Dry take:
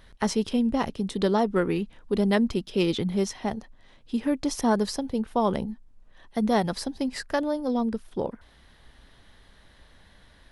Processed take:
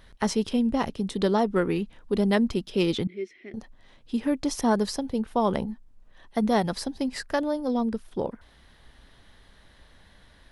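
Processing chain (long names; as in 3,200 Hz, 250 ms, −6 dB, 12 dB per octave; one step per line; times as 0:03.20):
0:03.07–0:03.54: pair of resonant band-passes 880 Hz, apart 2.6 octaves
0:05.55–0:06.44: dynamic equaliser 1,100 Hz, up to +5 dB, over −44 dBFS, Q 0.71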